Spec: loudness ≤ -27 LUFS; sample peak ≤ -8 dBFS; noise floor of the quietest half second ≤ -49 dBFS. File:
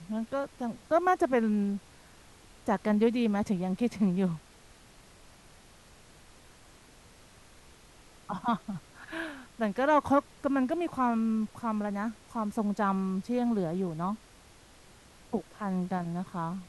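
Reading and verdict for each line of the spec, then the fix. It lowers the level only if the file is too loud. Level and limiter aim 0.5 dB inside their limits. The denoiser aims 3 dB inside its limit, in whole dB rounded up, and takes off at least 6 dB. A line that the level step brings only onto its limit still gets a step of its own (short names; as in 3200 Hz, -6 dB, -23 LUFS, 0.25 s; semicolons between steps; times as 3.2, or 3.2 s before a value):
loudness -30.5 LUFS: OK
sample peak -14.0 dBFS: OK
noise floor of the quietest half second -56 dBFS: OK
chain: none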